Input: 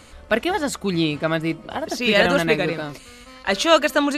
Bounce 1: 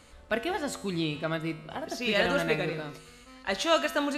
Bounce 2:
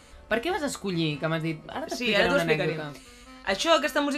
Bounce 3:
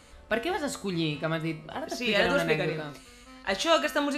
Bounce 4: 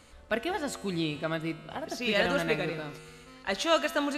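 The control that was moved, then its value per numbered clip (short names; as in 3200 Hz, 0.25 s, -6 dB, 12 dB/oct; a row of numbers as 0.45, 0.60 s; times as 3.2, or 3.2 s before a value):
resonator, decay: 1, 0.21, 0.46, 2.1 s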